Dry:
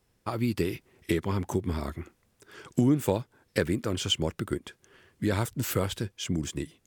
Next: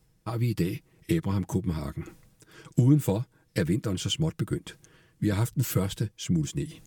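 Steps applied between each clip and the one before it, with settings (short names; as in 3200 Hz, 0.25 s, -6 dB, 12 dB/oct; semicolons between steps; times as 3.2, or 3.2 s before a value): tone controls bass +10 dB, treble +4 dB; comb 6.3 ms, depth 61%; reverse; upward compressor, threshold -31 dBFS; reverse; gain -5 dB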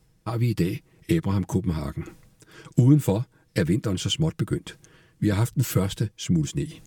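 high shelf 11000 Hz -4.5 dB; gain +3.5 dB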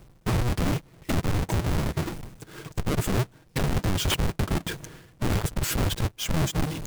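half-waves squared off; reverse; upward compressor, threshold -27 dBFS; reverse; wrapped overs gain 19.5 dB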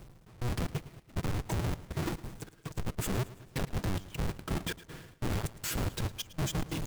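limiter -28 dBFS, peak gain reduction 8.5 dB; step gate "xxx..xxx." 181 bpm -24 dB; feedback echo 0.11 s, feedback 50%, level -17.5 dB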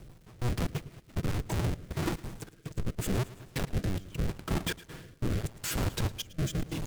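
rotary speaker horn 6 Hz, later 0.8 Hz, at 1.04; crackle 280/s -57 dBFS; gain +3.5 dB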